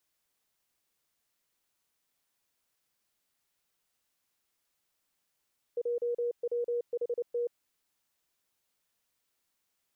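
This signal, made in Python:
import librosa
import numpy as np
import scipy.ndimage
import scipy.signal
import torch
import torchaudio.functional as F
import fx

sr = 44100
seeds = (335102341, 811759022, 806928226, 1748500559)

y = fx.morse(sr, text='JWHT', wpm=29, hz=478.0, level_db=-28.0)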